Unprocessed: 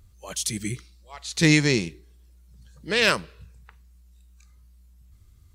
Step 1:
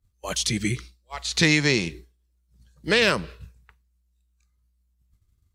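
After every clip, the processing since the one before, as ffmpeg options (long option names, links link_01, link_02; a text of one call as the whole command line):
ffmpeg -i in.wav -filter_complex "[0:a]agate=range=-33dB:threshold=-40dB:ratio=3:detection=peak,acrossover=split=560|5900[link_01][link_02][link_03];[link_01]acompressor=threshold=-30dB:ratio=4[link_04];[link_02]acompressor=threshold=-26dB:ratio=4[link_05];[link_03]acompressor=threshold=-47dB:ratio=4[link_06];[link_04][link_05][link_06]amix=inputs=3:normalize=0,volume=7.5dB" out.wav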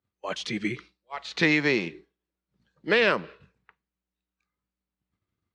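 ffmpeg -i in.wav -af "highpass=240,lowpass=2600" out.wav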